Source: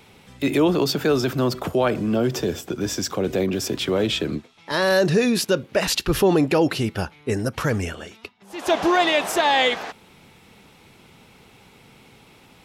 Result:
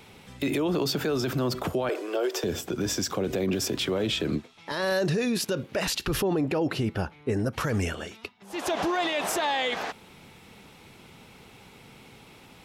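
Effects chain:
0:01.89–0:02.44: Butterworth high-pass 350 Hz 48 dB per octave
0:06.22–0:07.53: high-shelf EQ 2,500 Hz −9 dB
brickwall limiter −19 dBFS, peak gain reduction 10.5 dB

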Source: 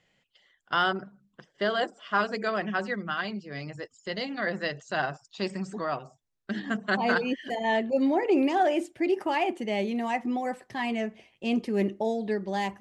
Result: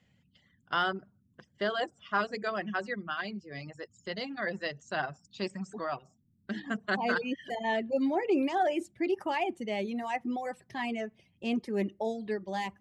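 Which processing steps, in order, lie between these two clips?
reverb reduction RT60 0.84 s
noise in a band 74–230 Hz −66 dBFS
level −3.5 dB

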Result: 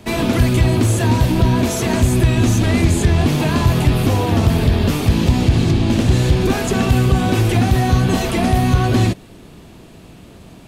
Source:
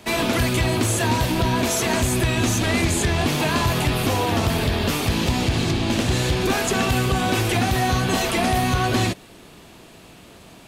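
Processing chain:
low-shelf EQ 390 Hz +11 dB
level −1.5 dB

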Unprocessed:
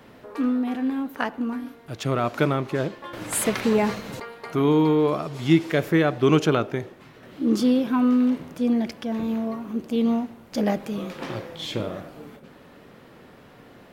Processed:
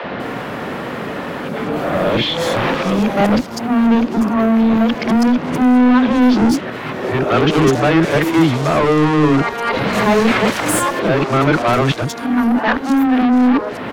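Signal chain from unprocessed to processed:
played backwards from end to start
low-shelf EQ 480 Hz +10 dB
in parallel at +1.5 dB: downward compressor, threshold −33 dBFS, peak gain reduction 25.5 dB
on the sum: mid-hump overdrive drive 27 dB, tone 3,900 Hz, clips at −4.5 dBFS
three-band delay without the direct sound mids, lows, highs 40/200 ms, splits 390/4,500 Hz
level −1 dB

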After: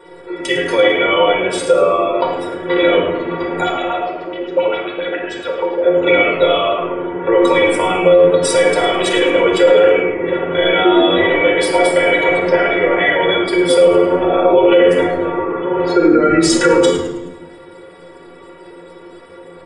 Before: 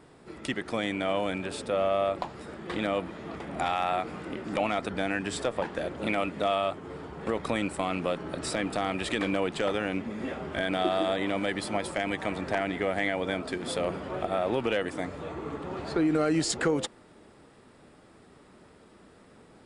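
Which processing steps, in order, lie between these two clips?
0:03.63–0:05.84: auto-filter band-pass sine 7.3 Hz 340–3,800 Hz
gate on every frequency bin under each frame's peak −30 dB strong
low shelf with overshoot 300 Hz −9.5 dB, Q 3
notch filter 4,400 Hz, Q 7.4
stiff-string resonator 170 Hz, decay 0.21 s, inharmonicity 0.008
hum removal 48.89 Hz, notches 13
echo with shifted repeats 106 ms, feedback 41%, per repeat −86 Hz, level −13.5 dB
rectangular room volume 3,200 cubic metres, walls furnished, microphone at 4.7 metres
boost into a limiter +23 dB
level −1 dB

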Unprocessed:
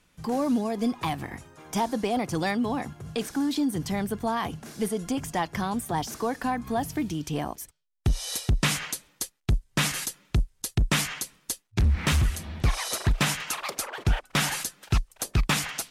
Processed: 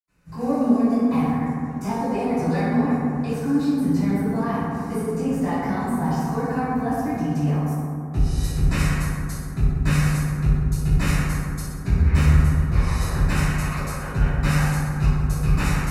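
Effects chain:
Butterworth band-reject 3,300 Hz, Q 7.7
convolution reverb RT60 2.4 s, pre-delay 76 ms
level +8 dB

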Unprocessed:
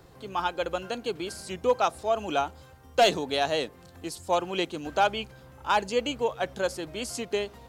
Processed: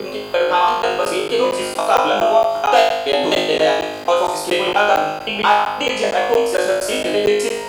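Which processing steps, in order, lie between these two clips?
slices reordered back to front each 85 ms, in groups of 4
high-shelf EQ 9,200 Hz +11 dB
in parallel at +2.5 dB: brickwall limiter −20 dBFS, peak gain reduction 8.5 dB
on the sum: bass and treble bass −12 dB, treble −9 dB
on a send: flutter between parallel walls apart 3.3 metres, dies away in 0.81 s
on the sum: steady tone 4,800 Hz −49 dBFS
regular buffer underruns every 0.23 s, samples 512, zero, from 0:00.82
multiband upward and downward compressor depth 40%
level +2.5 dB

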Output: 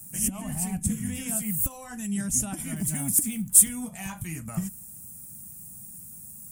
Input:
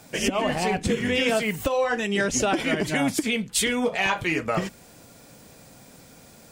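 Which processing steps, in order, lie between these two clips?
0:02.76–0:03.69: mu-law and A-law mismatch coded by mu
drawn EQ curve 200 Hz 0 dB, 450 Hz −28 dB, 730 Hz −16 dB, 4,300 Hz −19 dB, 9,400 Hz +14 dB

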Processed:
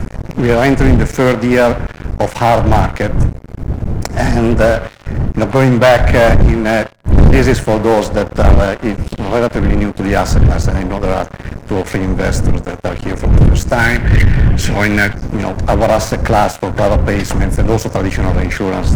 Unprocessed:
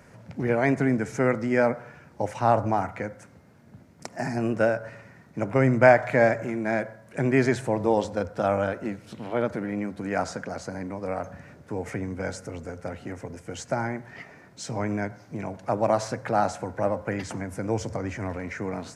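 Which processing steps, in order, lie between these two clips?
wind on the microphone 95 Hz −22 dBFS
gain on a spectral selection 0:13.79–0:15.13, 1,400–3,400 Hz +12 dB
in parallel at 0 dB: downward compressor, threshold −34 dBFS, peak gain reduction 29.5 dB
on the sum: leveller curve on the samples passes 5
level −6 dB

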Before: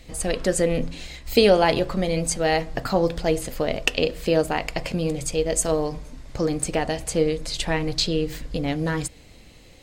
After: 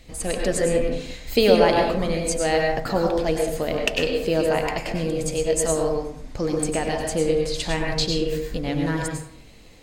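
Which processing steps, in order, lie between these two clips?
dense smooth reverb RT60 0.65 s, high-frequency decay 0.5×, pre-delay 85 ms, DRR 1 dB
level −2 dB

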